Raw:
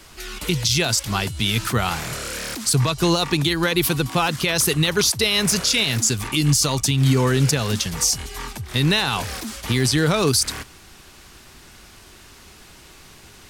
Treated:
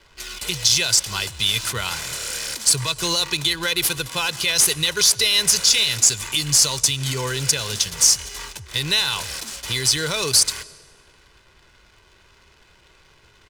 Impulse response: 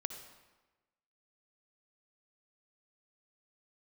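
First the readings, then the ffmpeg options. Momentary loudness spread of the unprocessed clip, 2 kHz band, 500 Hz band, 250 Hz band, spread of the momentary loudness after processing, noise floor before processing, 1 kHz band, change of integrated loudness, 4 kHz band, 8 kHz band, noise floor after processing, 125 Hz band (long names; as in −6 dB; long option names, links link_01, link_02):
9 LU, −0.5 dB, −7.0 dB, −12.0 dB, 11 LU, −47 dBFS, −5.5 dB, +1.5 dB, +3.5 dB, +5.0 dB, −55 dBFS, −10.0 dB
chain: -filter_complex "[0:a]highshelf=frequency=7900:gain=-4.5,aecho=1:1:2:0.52,crystalizer=i=8.5:c=0,adynamicsmooth=sensitivity=4:basefreq=980,asplit=2[link_01][link_02];[1:a]atrim=start_sample=2205,asetrate=24696,aresample=44100[link_03];[link_02][link_03]afir=irnorm=-1:irlink=0,volume=-16dB[link_04];[link_01][link_04]amix=inputs=2:normalize=0,volume=-12dB"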